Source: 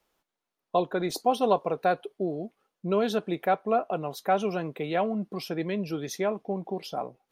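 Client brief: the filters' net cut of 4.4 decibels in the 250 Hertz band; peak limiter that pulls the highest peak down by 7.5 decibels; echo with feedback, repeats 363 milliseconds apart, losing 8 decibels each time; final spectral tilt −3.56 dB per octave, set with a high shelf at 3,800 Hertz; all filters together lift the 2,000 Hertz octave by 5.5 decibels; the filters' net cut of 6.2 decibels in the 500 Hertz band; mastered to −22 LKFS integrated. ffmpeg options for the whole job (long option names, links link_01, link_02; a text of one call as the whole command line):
ffmpeg -i in.wav -af "equalizer=frequency=250:width_type=o:gain=-4,equalizer=frequency=500:width_type=o:gain=-7.5,equalizer=frequency=2000:width_type=o:gain=6,highshelf=frequency=3800:gain=8.5,alimiter=limit=-19.5dB:level=0:latency=1,aecho=1:1:363|726|1089|1452|1815:0.398|0.159|0.0637|0.0255|0.0102,volume=10.5dB" out.wav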